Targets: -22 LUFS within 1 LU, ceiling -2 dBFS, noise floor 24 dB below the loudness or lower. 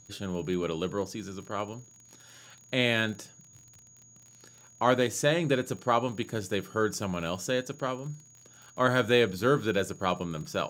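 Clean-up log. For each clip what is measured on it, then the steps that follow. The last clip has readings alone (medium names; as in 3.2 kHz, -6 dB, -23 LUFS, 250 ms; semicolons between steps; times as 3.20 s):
tick rate 36 per s; steady tone 6.7 kHz; tone level -54 dBFS; loudness -29.0 LUFS; peak level -9.5 dBFS; loudness target -22.0 LUFS
-> de-click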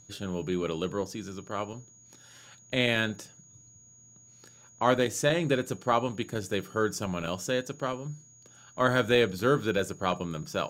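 tick rate 0.19 per s; steady tone 6.7 kHz; tone level -54 dBFS
-> band-stop 6.7 kHz, Q 30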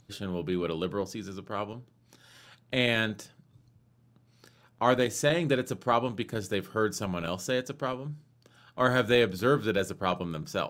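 steady tone not found; loudness -29.0 LUFS; peak level -9.5 dBFS; loudness target -22.0 LUFS
-> trim +7 dB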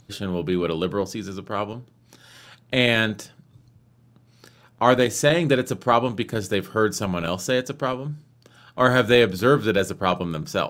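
loudness -22.0 LUFS; peak level -2.5 dBFS; noise floor -57 dBFS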